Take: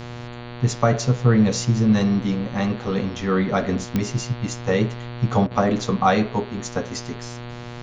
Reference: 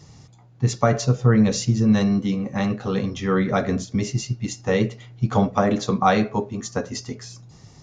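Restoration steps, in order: de-click; de-hum 120.3 Hz, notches 38; interpolate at 5.47, 38 ms; expander -27 dBFS, range -21 dB

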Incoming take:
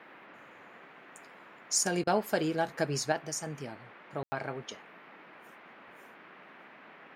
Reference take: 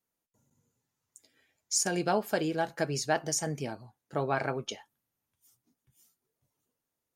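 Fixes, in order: room tone fill 4.23–4.32; interpolate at 2.04, 29 ms; noise print and reduce 30 dB; gain 0 dB, from 3.12 s +5.5 dB

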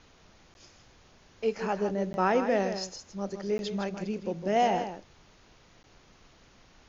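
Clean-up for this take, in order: interpolate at 0.54/2.13/3.58/5.83, 11 ms; noise print and reduce 16 dB; inverse comb 0.159 s -9 dB

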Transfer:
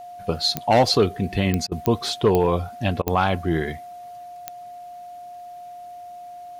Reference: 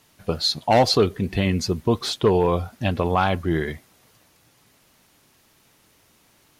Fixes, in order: de-click; notch 710 Hz, Q 30; interpolate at 1.67/3.02, 45 ms

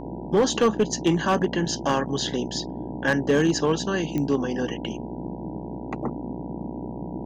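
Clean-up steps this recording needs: clip repair -13.5 dBFS; de-click; de-hum 60.2 Hz, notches 16; noise print and reduce 30 dB

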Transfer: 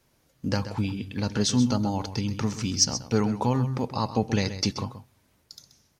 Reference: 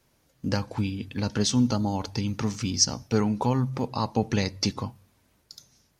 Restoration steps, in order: clip repair -10 dBFS; inverse comb 0.13 s -12 dB

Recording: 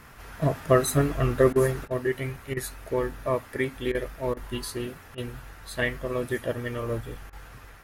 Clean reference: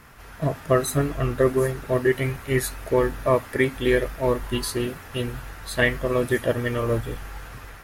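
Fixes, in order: interpolate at 1.53/1.88/2.54/3.92/4.34/5.15/7.3, 26 ms; gain correction +6.5 dB, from 1.85

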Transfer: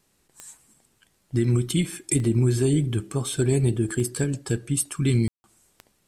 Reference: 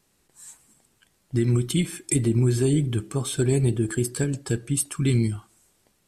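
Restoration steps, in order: de-click; room tone fill 5.28–5.44

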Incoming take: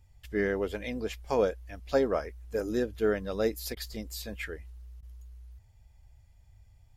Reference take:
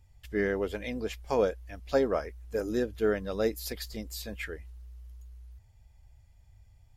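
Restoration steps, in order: interpolate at 3.75/5.01, 15 ms

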